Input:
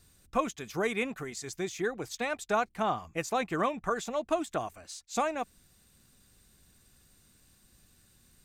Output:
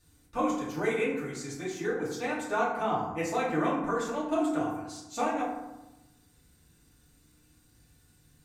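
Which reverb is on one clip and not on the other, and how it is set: FDN reverb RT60 1 s, low-frequency decay 1.4×, high-frequency decay 0.45×, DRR -7.5 dB; gain -8 dB

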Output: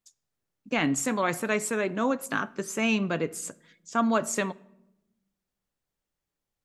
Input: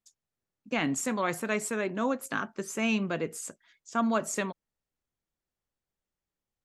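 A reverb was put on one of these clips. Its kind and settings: shoebox room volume 3000 m³, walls furnished, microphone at 0.38 m; gain +3 dB

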